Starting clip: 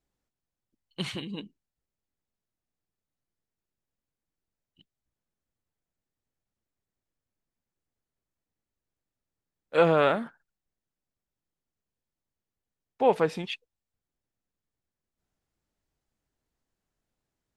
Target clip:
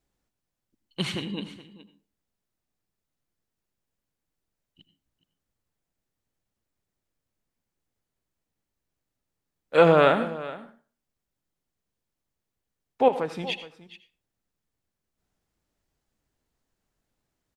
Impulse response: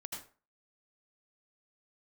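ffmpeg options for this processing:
-filter_complex "[0:a]asettb=1/sr,asplit=3[s0][s1][s2];[s0]atrim=end=13.084[s3];[s1]atrim=start=13.08:end=13.49,asetpts=PTS-STARTPTS,afade=t=in:d=0.004:c=qsin,afade=t=out:st=0.406:d=0.004:c=qsin,acompressor=threshold=0.0251:ratio=3[s4];[s2]atrim=start=13.486[s5];[s3][s4]acrossfade=d=0.004:c1=hsin:c2=qsin[s6];[s6][s5]acrossfade=d=0.004:c1=qsin:c2=hsin,aecho=1:1:420:0.141,asplit=2[s7][s8];[1:a]atrim=start_sample=2205[s9];[s8][s9]afir=irnorm=-1:irlink=0,volume=0.501[s10];[s7][s10]amix=inputs=2:normalize=0,volume=1.26"

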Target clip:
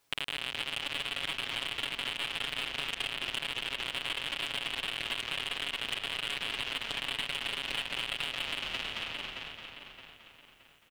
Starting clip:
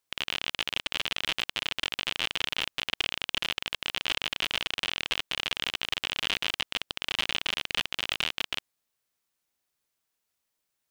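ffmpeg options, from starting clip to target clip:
-filter_complex "[0:a]highshelf=f=3800:g=-6,aecho=1:1:7.1:0.89,asplit=2[s0][s1];[s1]asplit=5[s2][s3][s4][s5][s6];[s2]adelay=220,afreqshift=-34,volume=0.266[s7];[s3]adelay=440,afreqshift=-68,volume=0.133[s8];[s4]adelay=660,afreqshift=-102,volume=0.0668[s9];[s5]adelay=880,afreqshift=-136,volume=0.0331[s10];[s6]adelay=1100,afreqshift=-170,volume=0.0166[s11];[s7][s8][s9][s10][s11]amix=inputs=5:normalize=0[s12];[s0][s12]amix=inputs=2:normalize=0,aeval=exprs='0.398*sin(PI/2*2.24*val(0)/0.398)':c=same,alimiter=limit=0.2:level=0:latency=1:release=44,asplit=2[s13][s14];[s14]adelay=620,lowpass=f=4400:p=1,volume=0.316,asplit=2[s15][s16];[s16]adelay=620,lowpass=f=4400:p=1,volume=0.4,asplit=2[s17][s18];[s18]adelay=620,lowpass=f=4400:p=1,volume=0.4,asplit=2[s19][s20];[s20]adelay=620,lowpass=f=4400:p=1,volume=0.4[s21];[s15][s17][s19][s21]amix=inputs=4:normalize=0[s22];[s13][s22]amix=inputs=2:normalize=0,acompressor=threshold=0.0316:ratio=6"

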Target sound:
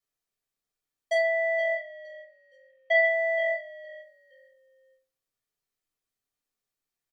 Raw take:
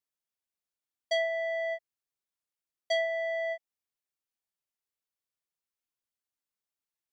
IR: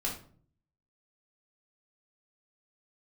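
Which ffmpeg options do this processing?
-filter_complex "[0:a]asettb=1/sr,asplit=3[s0][s1][s2];[s0]atrim=end=1.764[s3];[s1]atrim=start=1.76:end=3.05,asetpts=PTS-STARTPTS,afade=t=in:d=0.004:c=qsin,afade=t=out:st=1.286:d=0.004:c=qsin,lowpass=f=2500:t=q:w=3.3[s4];[s2]atrim=start=3.046[s5];[s3][s4]acrossfade=d=0.004:c1=hsin:c2=qsin[s6];[s6][s5]acrossfade=d=0.004:c1=qsin:c2=hsin,asplit=4[s7][s8][s9][s10];[s8]adelay=467,afreqshift=-44,volume=0.1[s11];[s9]adelay=934,afreqshift=-88,volume=0.0331[s12];[s10]adelay=1401,afreqshift=-132,volume=0.0108[s13];[s7][s11][s12][s13]amix=inputs=4:normalize=0[s14];[1:a]atrim=start_sample=2205,asetrate=70560,aresample=44100[s15];[s14][s15]afir=irnorm=-1:irlink=0,volume=1.58"

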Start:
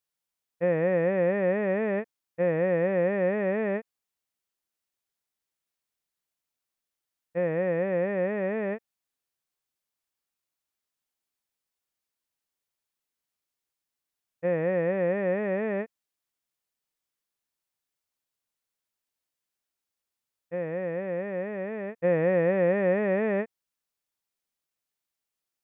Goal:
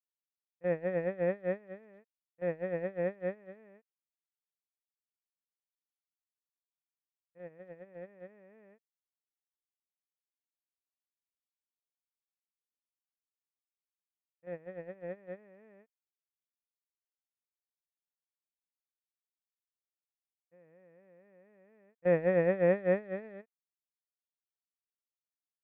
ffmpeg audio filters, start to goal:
-af "agate=range=0.0316:threshold=0.0794:ratio=16:detection=peak"

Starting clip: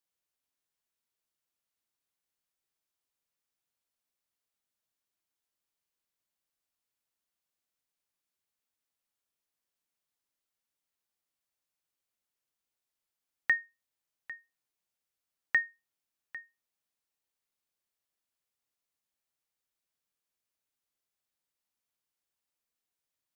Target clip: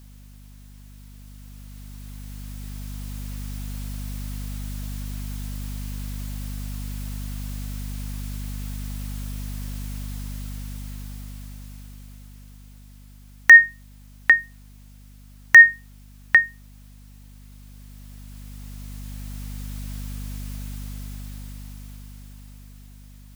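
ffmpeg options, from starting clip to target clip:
-af "aeval=exprs='val(0)+0.000178*(sin(2*PI*50*n/s)+sin(2*PI*2*50*n/s)/2+sin(2*PI*3*50*n/s)/3+sin(2*PI*4*50*n/s)/4+sin(2*PI*5*50*n/s)/5)':c=same,apsyclip=37.6,dynaudnorm=f=290:g=17:m=5.31,volume=0.891"

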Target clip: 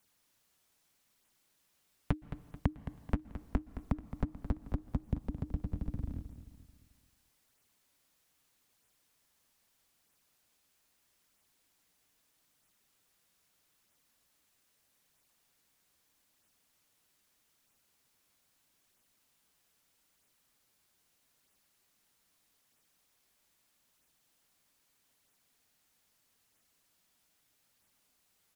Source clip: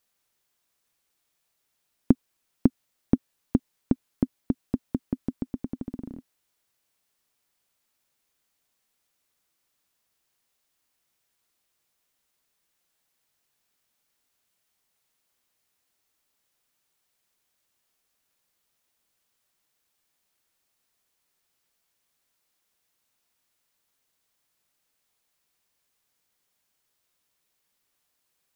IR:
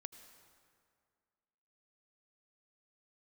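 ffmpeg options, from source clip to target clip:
-filter_complex "[0:a]acompressor=threshold=0.0282:ratio=6,flanger=delay=0.1:depth=8.8:regen=-34:speed=0.79:shape=sinusoidal,afreqshift=-310,aecho=1:1:218|436|654|872|1090:0.251|0.113|0.0509|0.0229|0.0103,asplit=2[s0][s1];[1:a]atrim=start_sample=2205,afade=t=out:st=0.36:d=0.01,atrim=end_sample=16317,asetrate=28665,aresample=44100[s2];[s1][s2]afir=irnorm=-1:irlink=0,volume=0.631[s3];[s0][s3]amix=inputs=2:normalize=0,volume=1.41"

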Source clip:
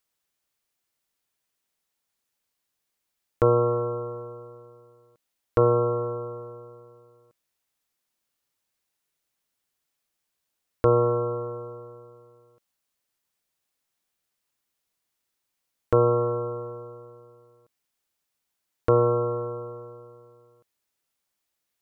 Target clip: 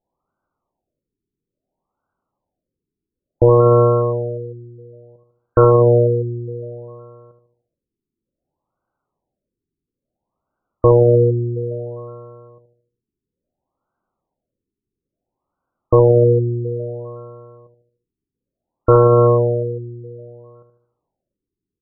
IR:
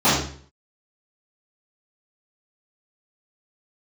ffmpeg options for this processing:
-filter_complex "[0:a]bandreject=f=450:w=12,asoftclip=type=hard:threshold=0.2,asplit=2[s0][s1];[s1]adelay=75,lowpass=f=1200:p=1,volume=0.398,asplit=2[s2][s3];[s3]adelay=75,lowpass=f=1200:p=1,volume=0.51,asplit=2[s4][s5];[s5]adelay=75,lowpass=f=1200:p=1,volume=0.51,asplit=2[s6][s7];[s7]adelay=75,lowpass=f=1200:p=1,volume=0.51,asplit=2[s8][s9];[s9]adelay=75,lowpass=f=1200:p=1,volume=0.51,asplit=2[s10][s11];[s11]adelay=75,lowpass=f=1200:p=1,volume=0.51[s12];[s2][s4][s6][s8][s10][s12]amix=inputs=6:normalize=0[s13];[s0][s13]amix=inputs=2:normalize=0,alimiter=level_in=5.62:limit=0.891:release=50:level=0:latency=1,afftfilt=real='re*lt(b*sr/1024,440*pow(1600/440,0.5+0.5*sin(2*PI*0.59*pts/sr)))':imag='im*lt(b*sr/1024,440*pow(1600/440,0.5+0.5*sin(2*PI*0.59*pts/sr)))':win_size=1024:overlap=0.75,volume=0.75"

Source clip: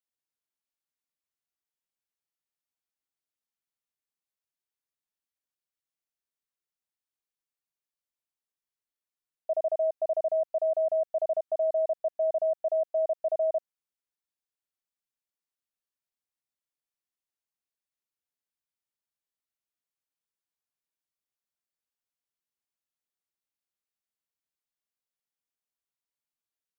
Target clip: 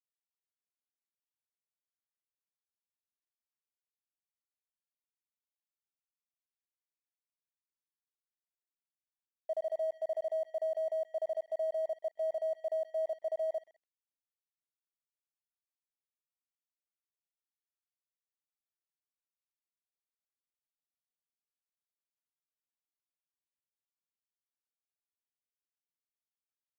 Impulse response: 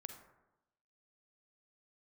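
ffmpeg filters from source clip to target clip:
-af "aecho=1:1:129|258|387|516:0.106|0.0487|0.0224|0.0103,aeval=exprs='sgn(val(0))*max(abs(val(0))-0.00237,0)':c=same,volume=0.473"

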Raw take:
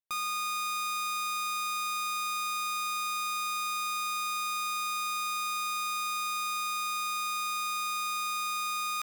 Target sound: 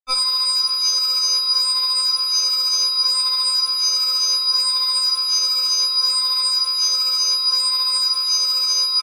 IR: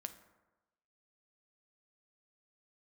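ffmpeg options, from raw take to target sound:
-af "bandreject=f=60:t=h:w=6,bandreject=f=120:t=h:w=6,bandreject=f=180:t=h:w=6,bandreject=f=240:t=h:w=6,bandreject=f=300:t=h:w=6,aecho=1:1:43|59:0.168|0.447,afftdn=nr=13:nf=-48,lowpass=6600,acontrast=46,lowshelf=f=170:g=10.5,flanger=delay=17:depth=5.9:speed=0.67,acrusher=bits=10:mix=0:aa=0.000001,alimiter=level_in=18.8:limit=0.891:release=50:level=0:latency=1,afftfilt=real='re*3.46*eq(mod(b,12),0)':imag='im*3.46*eq(mod(b,12),0)':win_size=2048:overlap=0.75,volume=0.794"

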